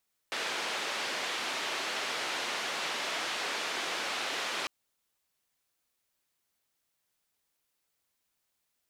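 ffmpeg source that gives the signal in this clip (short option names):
-f lavfi -i "anoisesrc=c=white:d=4.35:r=44100:seed=1,highpass=f=350,lowpass=f=3500,volume=-21.6dB"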